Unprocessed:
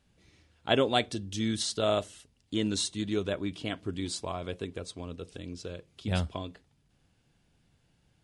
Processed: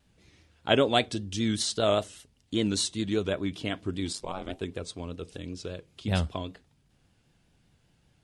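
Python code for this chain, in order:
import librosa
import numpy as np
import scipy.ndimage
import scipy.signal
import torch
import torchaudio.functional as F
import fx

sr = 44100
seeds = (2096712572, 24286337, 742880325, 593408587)

y = fx.vibrato(x, sr, rate_hz=5.1, depth_cents=72.0)
y = fx.ring_mod(y, sr, carrier_hz=fx.line((4.12, 42.0), (4.6, 230.0)), at=(4.12, 4.6), fade=0.02)
y = F.gain(torch.from_numpy(y), 2.5).numpy()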